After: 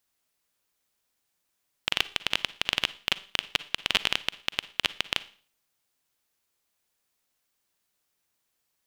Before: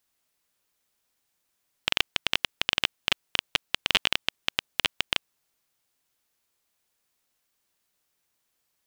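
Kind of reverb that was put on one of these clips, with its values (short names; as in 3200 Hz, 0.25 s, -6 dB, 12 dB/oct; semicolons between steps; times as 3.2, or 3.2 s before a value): Schroeder reverb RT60 0.43 s, DRR 16.5 dB; gain -1.5 dB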